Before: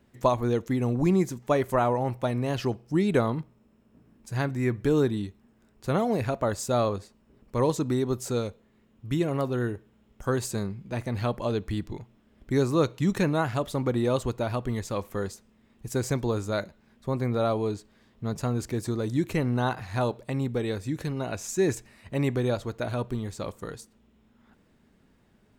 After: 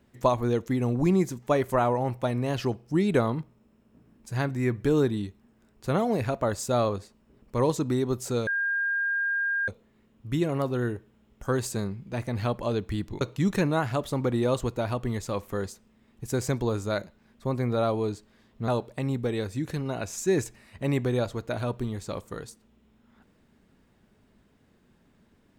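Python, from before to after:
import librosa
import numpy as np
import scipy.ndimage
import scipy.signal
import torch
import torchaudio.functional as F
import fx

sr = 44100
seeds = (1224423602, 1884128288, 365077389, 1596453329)

y = fx.edit(x, sr, fx.insert_tone(at_s=8.47, length_s=1.21, hz=1610.0, db=-24.0),
    fx.cut(start_s=12.0, length_s=0.83),
    fx.cut(start_s=18.3, length_s=1.69), tone=tone)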